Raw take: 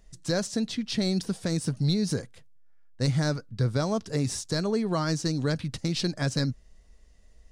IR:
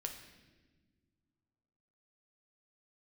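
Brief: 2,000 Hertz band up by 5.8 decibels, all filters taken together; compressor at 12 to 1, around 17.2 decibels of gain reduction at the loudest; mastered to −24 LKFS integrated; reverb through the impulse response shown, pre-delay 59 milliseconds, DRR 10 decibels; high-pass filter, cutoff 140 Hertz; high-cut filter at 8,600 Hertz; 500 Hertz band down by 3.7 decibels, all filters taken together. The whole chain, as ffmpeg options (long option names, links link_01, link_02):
-filter_complex "[0:a]highpass=140,lowpass=8600,equalizer=frequency=500:width_type=o:gain=-5,equalizer=frequency=2000:width_type=o:gain=8,acompressor=threshold=-41dB:ratio=12,asplit=2[link_01][link_02];[1:a]atrim=start_sample=2205,adelay=59[link_03];[link_02][link_03]afir=irnorm=-1:irlink=0,volume=-8.5dB[link_04];[link_01][link_04]amix=inputs=2:normalize=0,volume=20.5dB"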